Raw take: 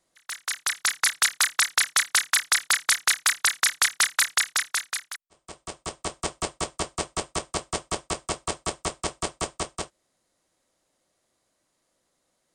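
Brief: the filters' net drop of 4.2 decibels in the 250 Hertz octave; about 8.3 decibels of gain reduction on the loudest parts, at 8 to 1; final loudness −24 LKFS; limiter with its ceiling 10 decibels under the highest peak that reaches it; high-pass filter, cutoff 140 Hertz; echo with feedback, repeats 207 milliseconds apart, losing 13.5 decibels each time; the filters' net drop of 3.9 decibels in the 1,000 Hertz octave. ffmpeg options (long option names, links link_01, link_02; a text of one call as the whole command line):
ffmpeg -i in.wav -af "highpass=140,equalizer=frequency=250:width_type=o:gain=-5.5,equalizer=frequency=1000:width_type=o:gain=-5,acompressor=threshold=-26dB:ratio=8,alimiter=limit=-23dB:level=0:latency=1,aecho=1:1:207|414:0.211|0.0444,volume=11.5dB" out.wav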